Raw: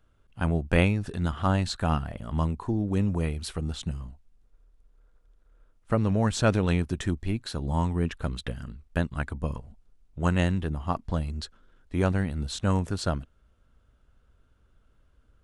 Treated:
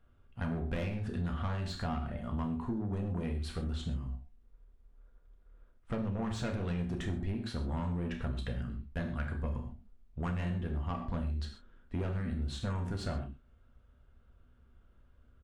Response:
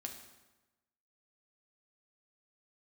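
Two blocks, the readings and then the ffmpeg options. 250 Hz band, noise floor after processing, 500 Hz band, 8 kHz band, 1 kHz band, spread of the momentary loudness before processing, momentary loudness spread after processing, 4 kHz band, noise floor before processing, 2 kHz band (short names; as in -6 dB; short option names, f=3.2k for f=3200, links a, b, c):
-8.0 dB, -63 dBFS, -10.5 dB, -14.0 dB, -10.0 dB, 11 LU, 6 LU, -9.5 dB, -64 dBFS, -10.5 dB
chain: -filter_complex "[0:a]asplit=2[a][b];[b]adelay=29,volume=-11dB[c];[a][c]amix=inputs=2:normalize=0,asoftclip=type=tanh:threshold=-25.5dB[d];[1:a]atrim=start_sample=2205,atrim=end_sample=6174[e];[d][e]afir=irnorm=-1:irlink=0,acompressor=threshold=-34dB:ratio=6,bass=f=250:g=2,treble=f=4k:g=-10,volume=1.5dB"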